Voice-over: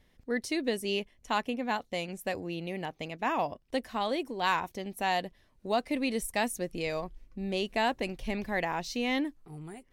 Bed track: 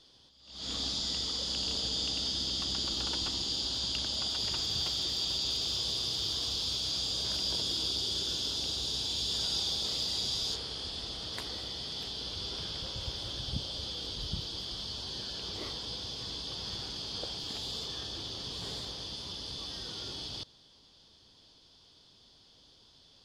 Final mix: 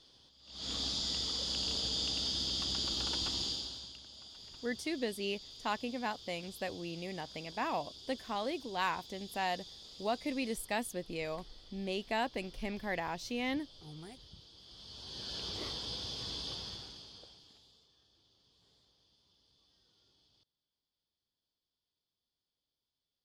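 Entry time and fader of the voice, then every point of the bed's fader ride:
4.35 s, -5.5 dB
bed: 3.46 s -2 dB
4 s -19 dB
14.57 s -19 dB
15.35 s -1.5 dB
16.5 s -1.5 dB
17.9 s -31 dB

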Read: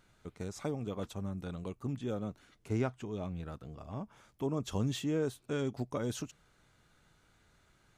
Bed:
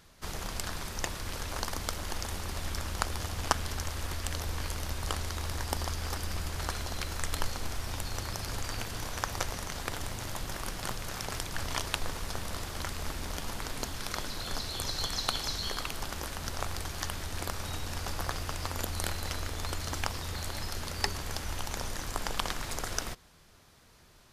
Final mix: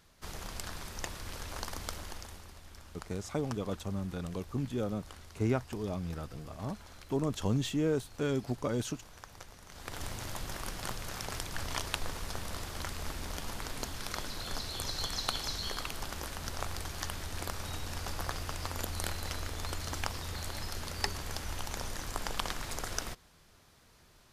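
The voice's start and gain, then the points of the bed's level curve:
2.70 s, +2.5 dB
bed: 1.96 s -5 dB
2.63 s -17 dB
9.61 s -17 dB
10.02 s -2.5 dB

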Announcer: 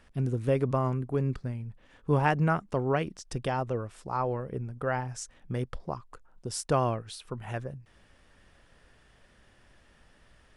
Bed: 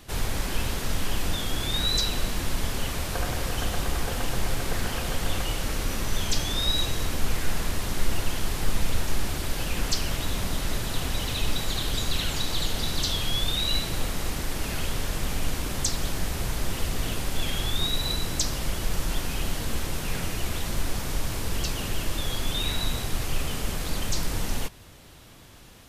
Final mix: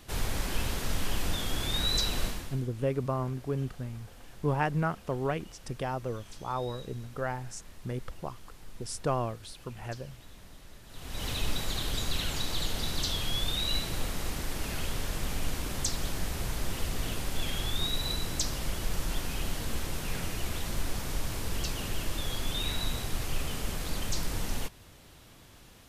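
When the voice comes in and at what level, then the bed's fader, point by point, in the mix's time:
2.35 s, -3.5 dB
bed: 2.26 s -3.5 dB
2.68 s -23 dB
10.84 s -23 dB
11.26 s -4.5 dB

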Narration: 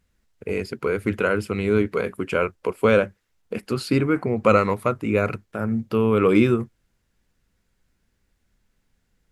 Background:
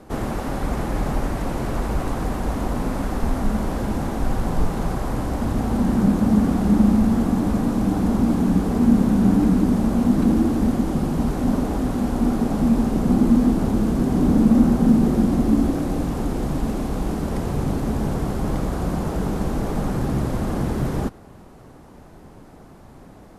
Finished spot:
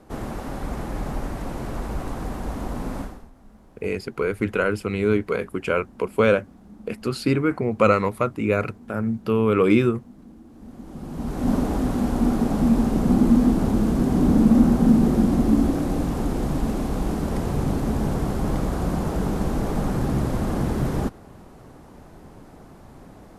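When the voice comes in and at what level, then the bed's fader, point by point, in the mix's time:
3.35 s, -0.5 dB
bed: 3.01 s -5.5 dB
3.31 s -28.5 dB
10.45 s -28.5 dB
11.51 s -0.5 dB

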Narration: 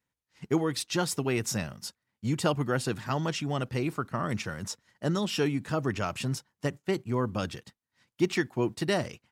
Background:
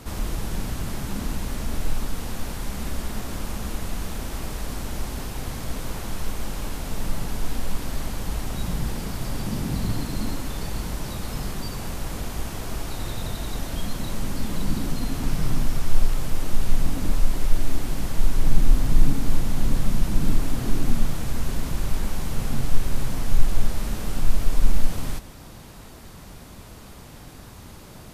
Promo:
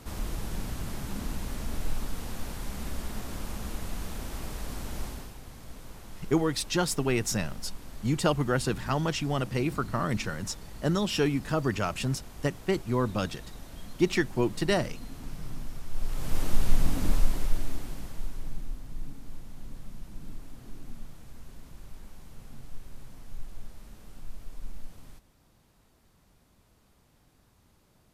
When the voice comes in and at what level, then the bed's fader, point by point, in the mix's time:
5.80 s, +1.5 dB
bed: 5.06 s -6 dB
5.4 s -15 dB
15.9 s -15 dB
16.37 s -2.5 dB
17.14 s -2.5 dB
18.81 s -21 dB

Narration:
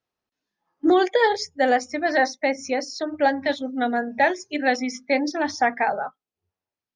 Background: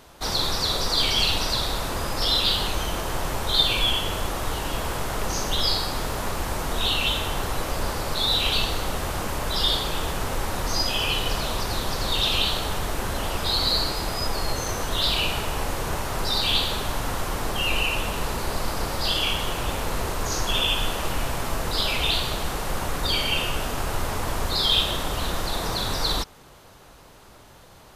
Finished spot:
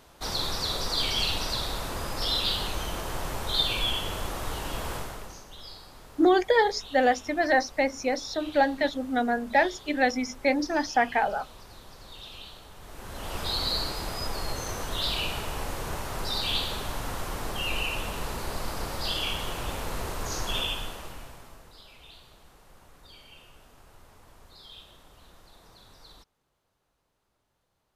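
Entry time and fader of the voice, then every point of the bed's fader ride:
5.35 s, -2.5 dB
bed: 4.96 s -5.5 dB
5.45 s -21.5 dB
12.74 s -21.5 dB
13.38 s -6 dB
20.59 s -6 dB
21.82 s -27.5 dB

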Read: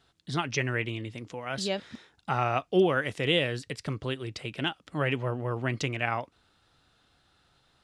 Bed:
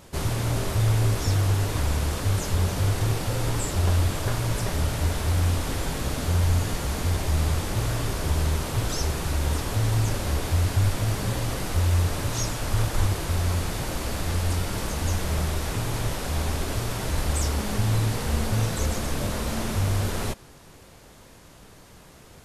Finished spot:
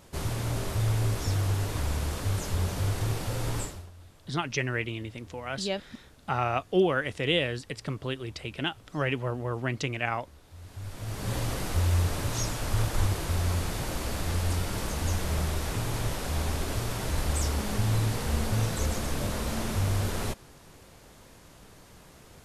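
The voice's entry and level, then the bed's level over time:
4.00 s, -0.5 dB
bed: 3.62 s -5 dB
3.91 s -28.5 dB
10.45 s -28.5 dB
11.35 s -3 dB

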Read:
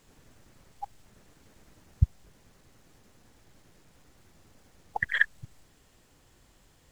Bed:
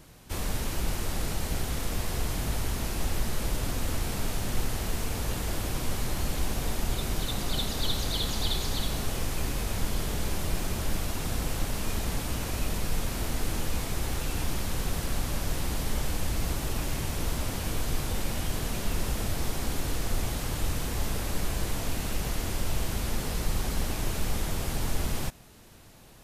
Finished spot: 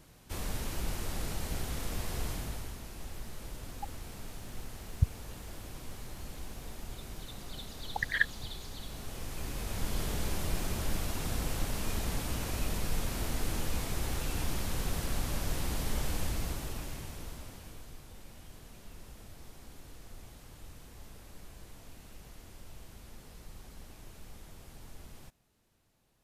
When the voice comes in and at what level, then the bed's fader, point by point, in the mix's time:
3.00 s, -4.0 dB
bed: 2.29 s -5.5 dB
2.82 s -14 dB
8.77 s -14 dB
10.01 s -3.5 dB
16.22 s -3.5 dB
18 s -20.5 dB

